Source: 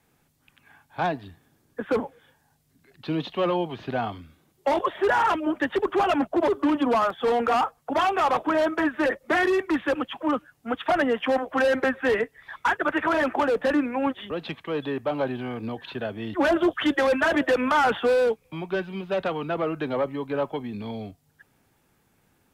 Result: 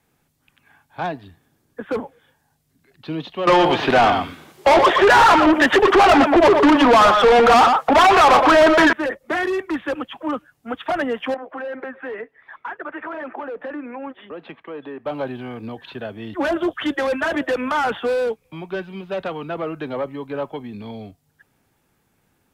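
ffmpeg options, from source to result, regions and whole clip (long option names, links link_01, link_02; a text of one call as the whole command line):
ffmpeg -i in.wav -filter_complex "[0:a]asettb=1/sr,asplit=3[link_01][link_02][link_03];[link_01]atrim=end=3.474[link_04];[link_02]atrim=start=3.47:end=8.93,asetpts=PTS-STARTPTS,afade=type=in:duration=0.004:curve=qsin,afade=type=out:start_time=5.456:duration=0.004:curve=qsin,acontrast=86,aecho=1:1:119:0.251,atrim=end_sample=240786,asplit=2[link_05][link_06];[link_06]highpass=frequency=720:poles=1,volume=23dB,asoftclip=type=tanh:threshold=-6dB[link_07];[link_05][link_07]amix=inputs=2:normalize=0,lowpass=frequency=3100:poles=1,volume=-6dB[link_08];[link_03]atrim=start=8.926[link_09];[link_04][link_08]acrossfade=duration=0.004:curve1=hsin:curve2=qsin[link_10];[link_10][link_09]acrossfade=duration=0.004:curve1=qsin:curve2=hsin,asettb=1/sr,asplit=3[link_11][link_12][link_13];[link_11]atrim=end=11.344[link_14];[link_12]atrim=start=11.34:end=15.06,asetpts=PTS-STARTPTS,afade=type=in:duration=0.004:curve=qsin,afade=type=out:start_time=3.716:duration=0.004:curve=qsin,acrossover=split=210 2700:gain=0.2 1 0.0794[link_15][link_16][link_17];[link_15][link_16][link_17]amix=inputs=3:normalize=0,acompressor=threshold=-30dB:ratio=2.5:attack=3.2:release=140:knee=1:detection=peak[link_18];[link_13]atrim=start=15.056[link_19];[link_14][link_18]acrossfade=duration=0.004:curve1=hsin:curve2=qsin[link_20];[link_20][link_19]acrossfade=duration=0.004:curve1=qsin:curve2=hsin" out.wav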